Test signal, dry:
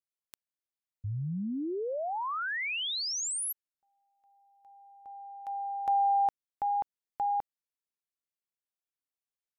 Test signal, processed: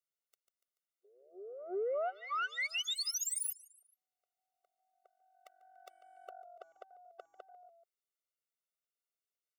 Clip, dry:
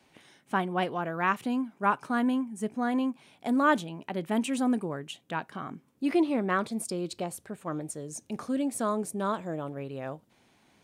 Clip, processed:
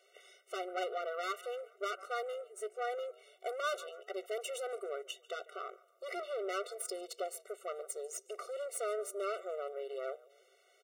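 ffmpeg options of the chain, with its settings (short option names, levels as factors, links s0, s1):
-filter_complex "[0:a]asplit=2[s0][s1];[s1]acompressor=threshold=0.0178:ratio=6:release=647,volume=0.708[s2];[s0][s2]amix=inputs=2:normalize=0,asplit=4[s3][s4][s5][s6];[s4]adelay=144,afreqshift=-46,volume=0.0794[s7];[s5]adelay=288,afreqshift=-92,volume=0.0389[s8];[s6]adelay=432,afreqshift=-138,volume=0.0191[s9];[s3][s7][s8][s9]amix=inputs=4:normalize=0,aeval=exprs='(tanh(25.1*val(0)+0.7)-tanh(0.7))/25.1':c=same,afftfilt=real='re*eq(mod(floor(b*sr/1024/380),2),1)':imag='im*eq(mod(floor(b*sr/1024/380),2),1)':win_size=1024:overlap=0.75"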